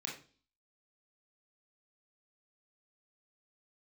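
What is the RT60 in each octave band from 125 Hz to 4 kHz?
0.50, 0.55, 0.45, 0.35, 0.35, 0.45 s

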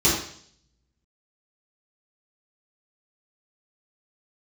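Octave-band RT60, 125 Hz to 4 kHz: 0.90, 0.60, 0.60, 0.55, 0.60, 0.70 s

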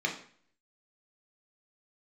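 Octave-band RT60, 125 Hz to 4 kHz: 0.60, 0.60, 0.50, 0.50, 0.50, 0.50 s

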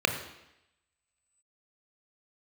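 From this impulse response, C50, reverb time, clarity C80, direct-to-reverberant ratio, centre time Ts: 8.5 dB, 0.85 s, 10.5 dB, 5.0 dB, 19 ms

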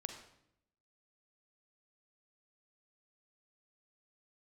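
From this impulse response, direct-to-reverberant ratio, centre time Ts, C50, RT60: 5.0 dB, 23 ms, 6.5 dB, 0.75 s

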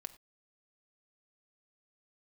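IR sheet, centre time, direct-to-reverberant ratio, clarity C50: 3 ms, 9.0 dB, 16.0 dB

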